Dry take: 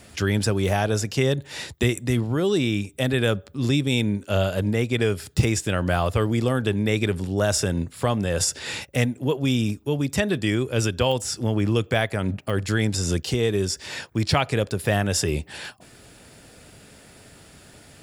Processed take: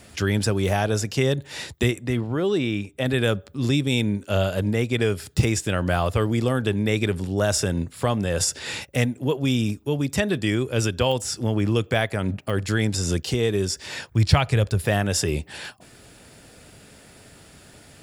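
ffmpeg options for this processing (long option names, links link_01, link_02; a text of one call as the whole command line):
ffmpeg -i in.wav -filter_complex "[0:a]asettb=1/sr,asplit=3[link_01][link_02][link_03];[link_01]atrim=end=1.914[link_04];[link_02]atrim=start=1.91:end=3.06,asetpts=PTS-STARTPTS,afade=type=in:duration=0.004:curve=qsin,afade=type=out:start_time=1.146:duration=0.004:curve=qsin,bass=frequency=250:gain=-3,treble=frequency=4000:gain=-9[link_05];[link_03]atrim=start=3.056[link_06];[link_04][link_05]acrossfade=duration=0.004:curve1=hsin:curve2=qsin[link_07];[link_07][link_06]acrossfade=duration=0.004:curve1=qsin:curve2=hsin,asplit=3[link_08][link_09][link_10];[link_08]afade=type=out:start_time=14.06:duration=0.02[link_11];[link_09]asubboost=boost=4:cutoff=120,afade=type=in:start_time=14.06:duration=0.02,afade=type=out:start_time=14.84:duration=0.02[link_12];[link_10]afade=type=in:start_time=14.84:duration=0.02[link_13];[link_11][link_12][link_13]amix=inputs=3:normalize=0" out.wav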